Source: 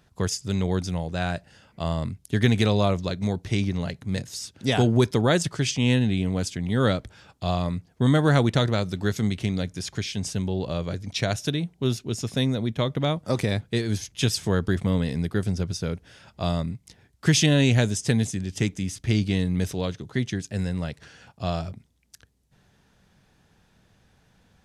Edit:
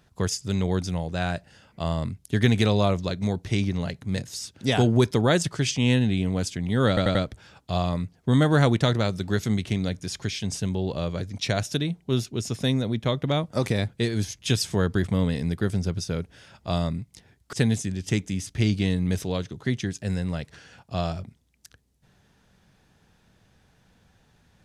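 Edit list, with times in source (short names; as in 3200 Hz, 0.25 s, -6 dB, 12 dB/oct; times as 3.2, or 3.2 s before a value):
6.88 stutter 0.09 s, 4 plays
17.26–18.02 cut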